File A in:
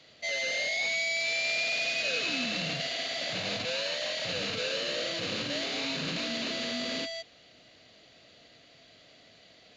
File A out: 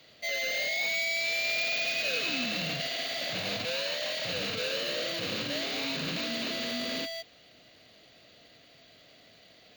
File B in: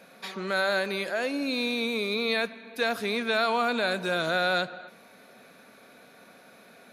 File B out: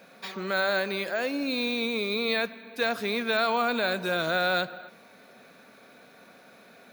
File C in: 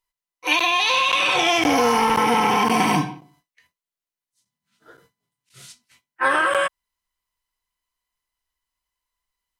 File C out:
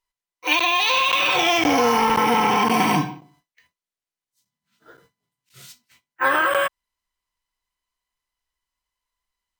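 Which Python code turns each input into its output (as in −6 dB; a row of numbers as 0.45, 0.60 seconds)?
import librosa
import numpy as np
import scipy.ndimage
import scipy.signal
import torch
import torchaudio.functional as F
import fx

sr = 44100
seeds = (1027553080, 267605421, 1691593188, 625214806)

y = np.repeat(scipy.signal.resample_poly(x, 1, 2), 2)[:len(x)]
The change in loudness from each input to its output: 0.0, 0.0, 0.0 LU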